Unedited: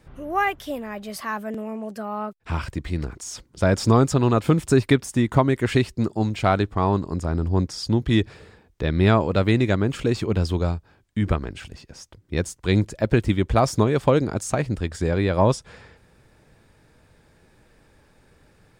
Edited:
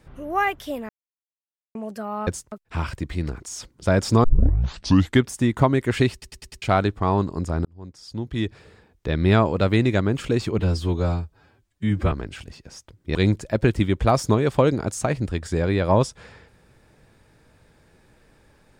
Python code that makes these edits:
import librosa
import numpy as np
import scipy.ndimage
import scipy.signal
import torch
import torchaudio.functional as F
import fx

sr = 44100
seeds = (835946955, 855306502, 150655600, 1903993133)

y = fx.edit(x, sr, fx.silence(start_s=0.89, length_s=0.86),
    fx.tape_start(start_s=3.99, length_s=1.02),
    fx.stutter_over(start_s=5.87, slice_s=0.1, count=5),
    fx.fade_in_span(start_s=7.4, length_s=1.53),
    fx.stretch_span(start_s=10.34, length_s=1.02, factor=1.5),
    fx.move(start_s=12.39, length_s=0.25, to_s=2.27), tone=tone)